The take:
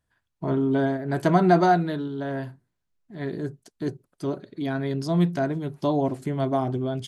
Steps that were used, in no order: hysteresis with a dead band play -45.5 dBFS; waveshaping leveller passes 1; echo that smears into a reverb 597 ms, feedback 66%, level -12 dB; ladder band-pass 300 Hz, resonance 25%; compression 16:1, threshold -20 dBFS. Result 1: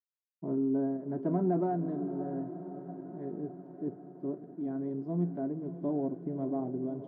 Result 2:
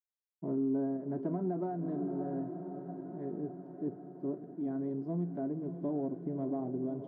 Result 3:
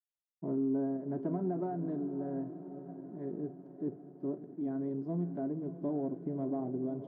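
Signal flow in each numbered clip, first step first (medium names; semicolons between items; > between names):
hysteresis with a dead band > echo that smears into a reverb > waveshaping leveller > ladder band-pass > compression; hysteresis with a dead band > echo that smears into a reverb > compression > waveshaping leveller > ladder band-pass; compression > echo that smears into a reverb > hysteresis with a dead band > waveshaping leveller > ladder band-pass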